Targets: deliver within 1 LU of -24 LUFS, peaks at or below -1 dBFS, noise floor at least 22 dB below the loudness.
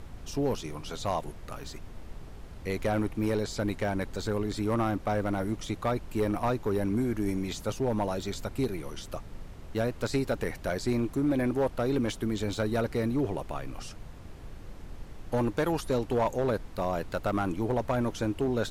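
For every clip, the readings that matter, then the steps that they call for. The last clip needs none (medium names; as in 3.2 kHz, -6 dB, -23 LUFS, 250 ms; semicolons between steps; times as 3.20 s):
clipped samples 0.7%; clipping level -20.5 dBFS; noise floor -45 dBFS; noise floor target -53 dBFS; loudness -30.5 LUFS; peak level -20.5 dBFS; loudness target -24.0 LUFS
-> clip repair -20.5 dBFS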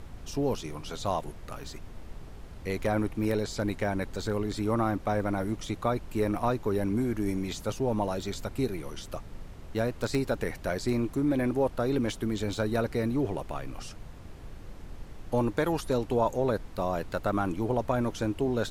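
clipped samples 0.0%; noise floor -45 dBFS; noise floor target -53 dBFS
-> noise print and reduce 8 dB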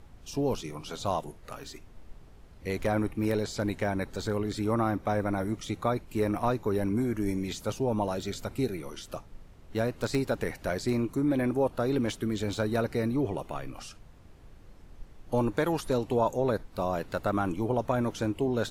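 noise floor -52 dBFS; noise floor target -53 dBFS
-> noise print and reduce 6 dB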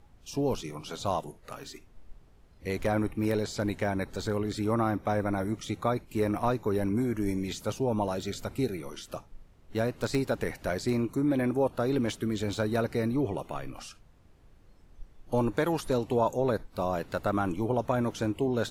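noise floor -57 dBFS; loudness -30.5 LUFS; peak level -12.0 dBFS; loudness target -24.0 LUFS
-> trim +6.5 dB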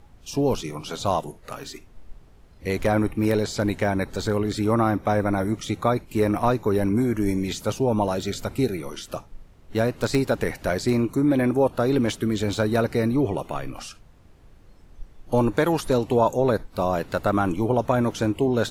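loudness -24.0 LUFS; peak level -5.5 dBFS; noise floor -51 dBFS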